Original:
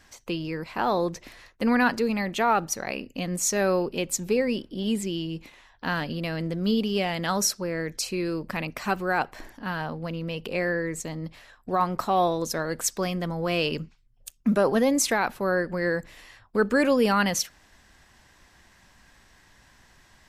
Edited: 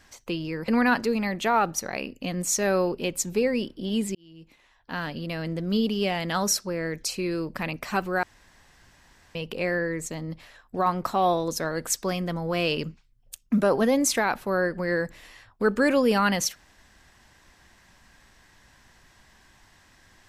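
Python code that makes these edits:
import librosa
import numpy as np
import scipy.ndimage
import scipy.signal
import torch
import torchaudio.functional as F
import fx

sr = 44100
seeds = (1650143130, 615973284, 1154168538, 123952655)

y = fx.edit(x, sr, fx.cut(start_s=0.68, length_s=0.94),
    fx.fade_in_span(start_s=5.09, length_s=1.9, curve='qsin'),
    fx.room_tone_fill(start_s=9.17, length_s=1.12), tone=tone)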